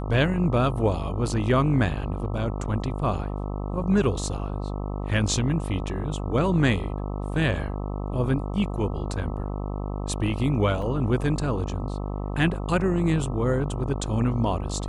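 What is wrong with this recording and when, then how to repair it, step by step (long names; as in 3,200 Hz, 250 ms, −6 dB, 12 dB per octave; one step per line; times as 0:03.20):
mains buzz 50 Hz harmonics 26 −30 dBFS
0:10.82: drop-out 3.1 ms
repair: hum removal 50 Hz, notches 26
repair the gap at 0:10.82, 3.1 ms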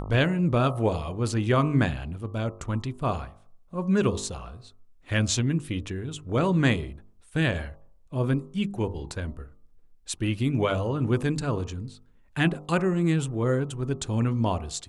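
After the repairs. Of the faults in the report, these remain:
none of them is left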